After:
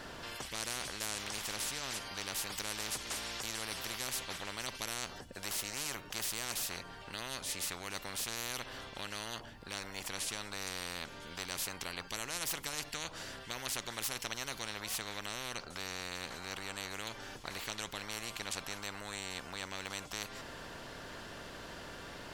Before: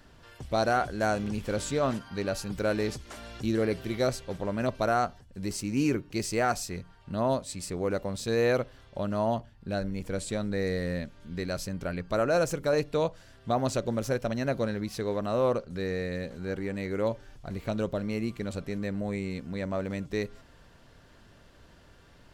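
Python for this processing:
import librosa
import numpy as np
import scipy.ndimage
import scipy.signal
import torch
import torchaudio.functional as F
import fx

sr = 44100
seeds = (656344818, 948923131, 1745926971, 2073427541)

y = fx.spectral_comp(x, sr, ratio=10.0)
y = y * 10.0 ** (-4.0 / 20.0)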